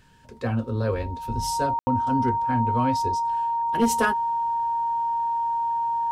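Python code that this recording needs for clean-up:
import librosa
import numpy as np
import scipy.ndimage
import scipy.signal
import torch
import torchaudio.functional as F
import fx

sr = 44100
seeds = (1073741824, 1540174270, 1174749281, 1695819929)

y = fx.fix_declip(x, sr, threshold_db=-12.5)
y = fx.notch(y, sr, hz=930.0, q=30.0)
y = fx.fix_ambience(y, sr, seeds[0], print_start_s=0.0, print_end_s=0.5, start_s=1.79, end_s=1.87)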